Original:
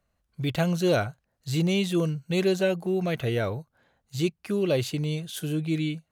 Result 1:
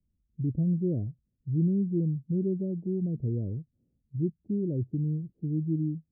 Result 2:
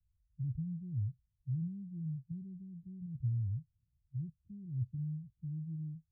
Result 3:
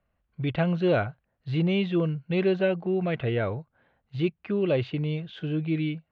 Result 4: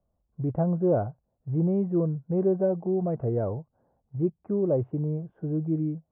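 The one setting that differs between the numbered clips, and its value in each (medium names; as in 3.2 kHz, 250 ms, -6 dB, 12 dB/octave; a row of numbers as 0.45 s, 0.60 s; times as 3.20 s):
inverse Chebyshev low-pass, stop band from: 1.4 kHz, 540 Hz, 11 kHz, 4 kHz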